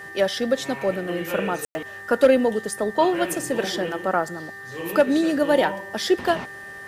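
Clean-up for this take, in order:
clipped peaks rebuilt −7.5 dBFS
hum removal 394 Hz, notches 5
notch filter 1,800 Hz, Q 30
ambience match 0:01.65–0:01.75

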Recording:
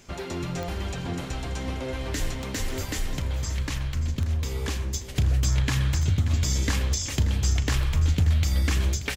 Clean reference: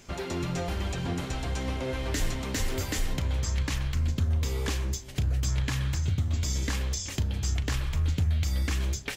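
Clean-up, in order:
click removal
echo removal 583 ms −13.5 dB
level correction −4.5 dB, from 0:04.94

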